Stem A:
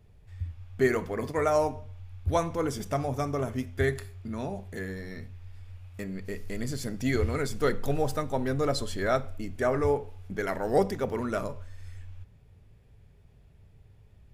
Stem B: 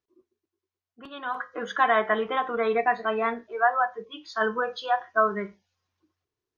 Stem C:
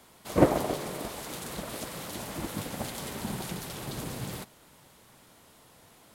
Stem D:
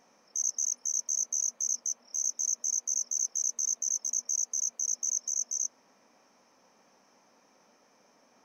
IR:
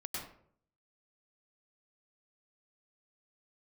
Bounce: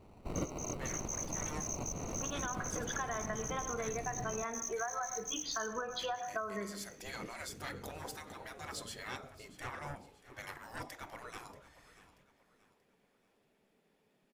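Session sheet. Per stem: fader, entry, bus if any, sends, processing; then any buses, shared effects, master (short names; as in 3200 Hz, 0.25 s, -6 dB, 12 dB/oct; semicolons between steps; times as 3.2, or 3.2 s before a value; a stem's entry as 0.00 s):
-4.5 dB, 0.00 s, no send, echo send -17 dB, soft clip -20.5 dBFS, distortion -15 dB; spectral gate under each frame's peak -15 dB weak
+3.0 dB, 1.20 s, send -10.5 dB, no echo send, compressor 3:1, threshold -37 dBFS, peak gain reduction 15 dB
-8.0 dB, 0.00 s, no send, no echo send, high shelf 5000 Hz +8.5 dB; sample-and-hold 26×; tilt -2.5 dB/oct
-7.5 dB, 0.00 s, no send, echo send -12.5 dB, bit-crush 8-bit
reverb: on, RT60 0.60 s, pre-delay 93 ms
echo: feedback echo 0.633 s, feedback 38%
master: compressor 6:1, threshold -35 dBFS, peak gain reduction 16.5 dB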